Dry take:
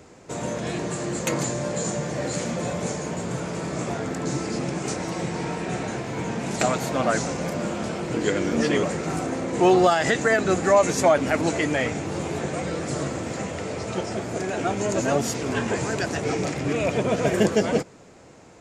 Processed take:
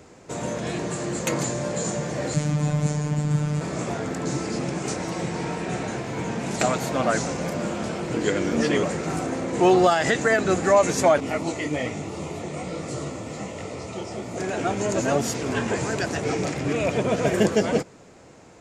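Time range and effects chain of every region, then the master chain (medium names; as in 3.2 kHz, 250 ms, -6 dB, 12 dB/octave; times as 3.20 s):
2.34–3.61 s: resonant low shelf 270 Hz +8.5 dB, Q 1.5 + robot voice 149 Hz
11.20–14.38 s: Butterworth band-stop 1.6 kHz, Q 5.2 + detune thickener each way 43 cents
whole clip: none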